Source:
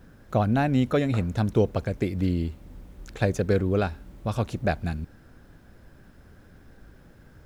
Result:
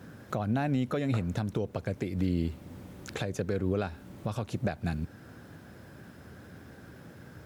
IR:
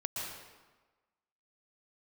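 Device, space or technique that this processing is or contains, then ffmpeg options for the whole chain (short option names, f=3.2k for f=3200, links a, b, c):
podcast mastering chain: -af "highpass=f=86:w=0.5412,highpass=f=86:w=1.3066,acompressor=threshold=-26dB:ratio=2.5,alimiter=level_in=0.5dB:limit=-24dB:level=0:latency=1:release=408,volume=-0.5dB,volume=5.5dB" -ar 44100 -c:a libmp3lame -b:a 96k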